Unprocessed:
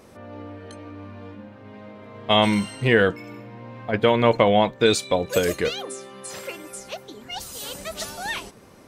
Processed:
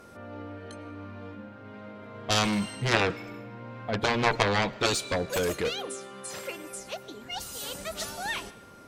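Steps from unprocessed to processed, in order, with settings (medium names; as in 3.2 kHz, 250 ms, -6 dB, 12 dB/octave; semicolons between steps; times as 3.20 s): whistle 1.4 kHz -50 dBFS; Chebyshev shaper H 3 -8 dB, 7 -20 dB, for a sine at -3.5 dBFS; algorithmic reverb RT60 1 s, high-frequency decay 0.9×, pre-delay 70 ms, DRR 20 dB; trim -1.5 dB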